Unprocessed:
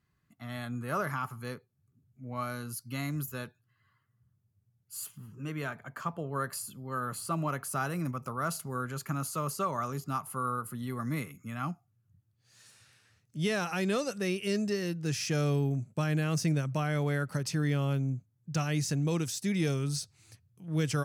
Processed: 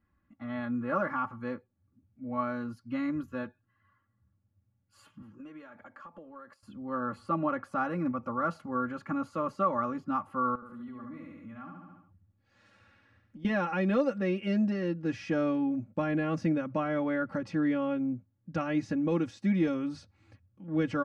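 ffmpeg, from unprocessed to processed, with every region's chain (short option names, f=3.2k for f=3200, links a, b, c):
-filter_complex "[0:a]asettb=1/sr,asplit=3[a][b][c];[a]atrim=end=5.224[d];[b]atrim=start=5.22:end=6.63,asetpts=PTS-STARTPTS,afade=t=in:d=0.004:c=qsin,afade=t=out:st=1.406:d=0.004:c=qsin,bass=f=250:g=-7,treble=f=4k:g=8,acompressor=threshold=-46dB:ratio=12:attack=3.2:release=140:knee=1:detection=peak[e];[c]atrim=start=6.626[f];[d][e]acrossfade=d=0.004:c1=hsin:c2=qsin[g];[g][f]acrossfade=d=0.004:c1=qsin:c2=hsin,asettb=1/sr,asplit=3[h][i][j];[h]atrim=end=10.554[k];[i]atrim=start=10.55:end=13.45,asetpts=PTS-STARTPTS,afade=t=in:d=0.004:c=qsin,afade=t=out:st=2.896:d=0.004:c=qsin,aecho=1:1:71|142|213|284|355|426:0.668|0.294|0.129|0.0569|0.0251|0.011,atrim=end_sample=127890,acompressor=threshold=-49dB:ratio=3:attack=3.2:release=140:knee=1:detection=peak[l];[j]atrim=start=13.446[m];[k][l]acrossfade=d=0.004:c1=hsin:c2=qsin[n];[n][m]acrossfade=d=0.004:c1=qsin:c2=hsin,lowpass=1.8k,lowshelf=f=360:g=3,aecho=1:1:3.6:0.95"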